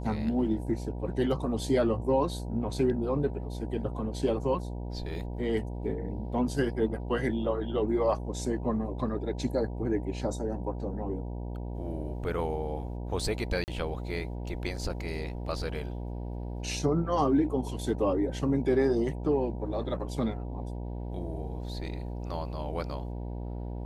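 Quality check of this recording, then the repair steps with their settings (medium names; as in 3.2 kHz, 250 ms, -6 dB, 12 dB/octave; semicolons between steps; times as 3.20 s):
buzz 60 Hz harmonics 16 -36 dBFS
13.64–13.68 s: dropout 39 ms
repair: de-hum 60 Hz, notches 16; interpolate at 13.64 s, 39 ms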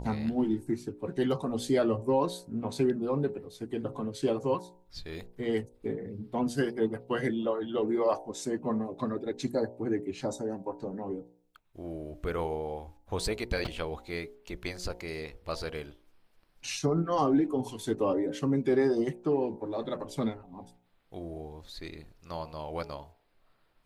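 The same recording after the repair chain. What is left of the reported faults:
nothing left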